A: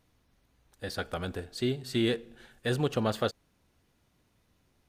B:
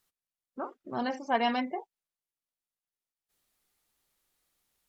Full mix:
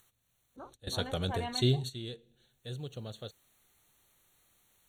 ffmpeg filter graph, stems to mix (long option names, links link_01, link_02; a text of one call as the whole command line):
ffmpeg -i stem1.wav -i stem2.wav -filter_complex "[0:a]equalizer=frequency=125:width_type=o:width=1:gain=10,equalizer=frequency=250:width_type=o:width=1:gain=-3,equalizer=frequency=500:width_type=o:width=1:gain=3,equalizer=frequency=1000:width_type=o:width=1:gain=-6,equalizer=frequency=2000:width_type=o:width=1:gain=-6,equalizer=frequency=4000:width_type=o:width=1:gain=11,equalizer=frequency=8000:width_type=o:width=1:gain=3,volume=-1dB[link_01];[1:a]acompressor=mode=upward:threshold=-40dB:ratio=2.5,volume=-11.5dB,asplit=2[link_02][link_03];[link_03]apad=whole_len=215379[link_04];[link_01][link_04]sidechaingate=range=-16dB:threshold=-57dB:ratio=16:detection=peak[link_05];[link_05][link_02]amix=inputs=2:normalize=0,asuperstop=centerf=5000:order=20:qfactor=4" out.wav